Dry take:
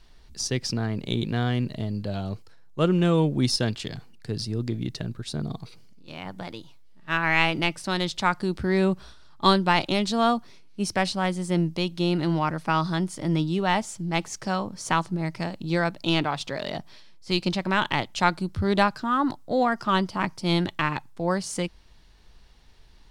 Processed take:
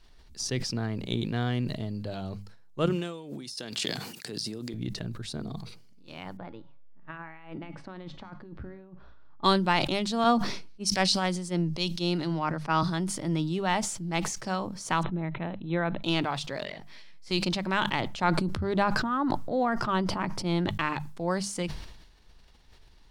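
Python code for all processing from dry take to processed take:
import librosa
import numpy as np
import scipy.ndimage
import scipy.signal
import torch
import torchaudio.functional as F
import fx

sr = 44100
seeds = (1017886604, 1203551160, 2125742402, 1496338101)

y = fx.chain(x, sr, fx.high_shelf(hz=3300.0, db=9.5),
    fx.over_compress(threshold_db=-32.0, ratio=-1.0),
    fx.highpass(hz=220.0, slope=12), at=(2.86, 4.74))
y = fx.chain(y, sr, fx.lowpass(hz=1600.0, slope=12),
    fx.over_compress(threshold_db=-30.0, ratio=-0.5),
    fx.comb_fb(f0_hz=280.0, decay_s=0.68, harmonics='all', damping=0.0, mix_pct=60), at=(6.37, 9.44))
y = fx.chain(y, sr, fx.peak_eq(hz=5100.0, db=7.0, octaves=1.1),
    fx.band_widen(depth_pct=100), at=(10.24, 12.83))
y = fx.chain(y, sr, fx.brickwall_lowpass(high_hz=4100.0),
    fx.high_shelf(hz=3200.0, db=-8.5), at=(15.03, 16.04))
y = fx.chain(y, sr, fx.peak_eq(hz=2100.0, db=8.5, octaves=0.62),
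    fx.over_compress(threshold_db=-38.0, ratio=-1.0),
    fx.detune_double(cents=11), at=(16.64, 17.31))
y = fx.chain(y, sr, fx.high_shelf(hz=2600.0, db=-10.0),
    fx.sustainer(db_per_s=28.0), at=(18.01, 20.71))
y = fx.hum_notches(y, sr, base_hz=50, count=4)
y = fx.sustainer(y, sr, db_per_s=56.0)
y = y * 10.0 ** (-4.0 / 20.0)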